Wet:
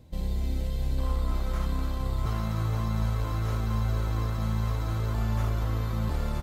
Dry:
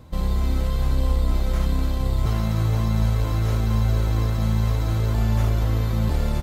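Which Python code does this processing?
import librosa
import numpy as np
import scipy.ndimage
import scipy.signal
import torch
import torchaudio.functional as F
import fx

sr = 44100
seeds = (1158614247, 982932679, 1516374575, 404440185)

y = fx.peak_eq(x, sr, hz=1200.0, db=fx.steps((0.0, -11.0), (0.98, 6.0)), octaves=0.78)
y = y * librosa.db_to_amplitude(-7.0)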